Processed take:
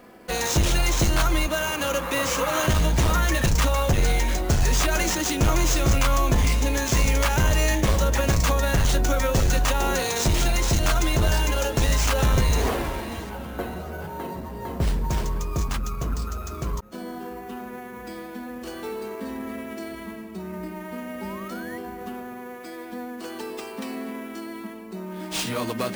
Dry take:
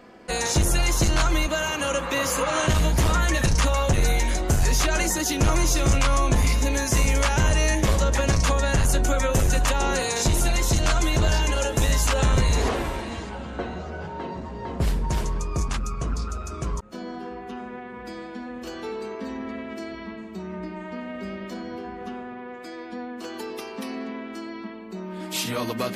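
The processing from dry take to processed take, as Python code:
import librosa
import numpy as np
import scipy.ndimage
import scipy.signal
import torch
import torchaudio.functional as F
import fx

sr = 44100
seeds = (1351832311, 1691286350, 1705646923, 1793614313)

y = fx.spec_paint(x, sr, seeds[0], shape='rise', start_s=21.21, length_s=0.57, low_hz=840.0, high_hz=2000.0, level_db=-41.0)
y = fx.sample_hold(y, sr, seeds[1], rate_hz=13000.0, jitter_pct=0)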